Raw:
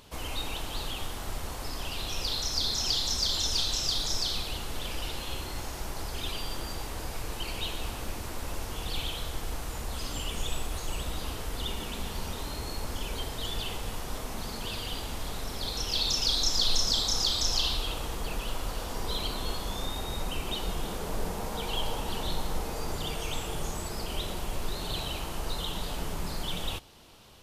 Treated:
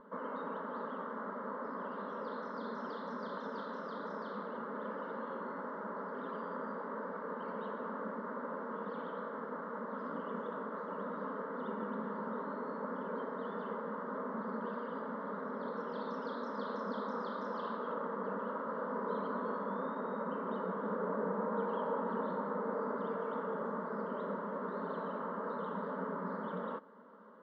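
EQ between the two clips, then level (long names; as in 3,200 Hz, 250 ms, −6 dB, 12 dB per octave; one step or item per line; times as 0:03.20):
linear-phase brick-wall high-pass 180 Hz
low-pass filter 1,600 Hz 24 dB per octave
phaser with its sweep stopped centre 500 Hz, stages 8
+4.5 dB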